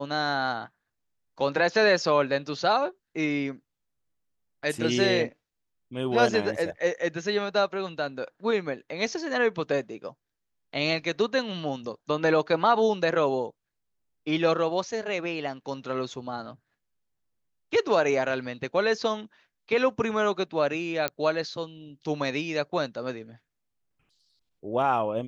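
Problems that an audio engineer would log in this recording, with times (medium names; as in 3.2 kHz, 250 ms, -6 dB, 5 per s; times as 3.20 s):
21.08 s: pop -11 dBFS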